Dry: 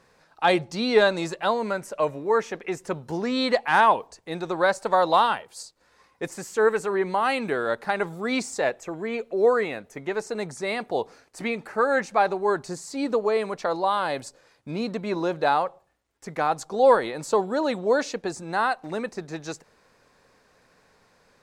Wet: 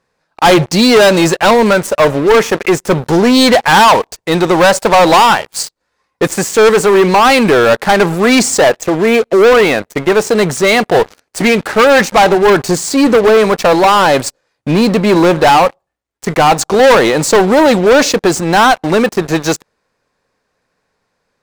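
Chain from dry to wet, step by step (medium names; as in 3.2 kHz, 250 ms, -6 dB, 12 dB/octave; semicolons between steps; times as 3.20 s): waveshaping leveller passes 5; trim +3.5 dB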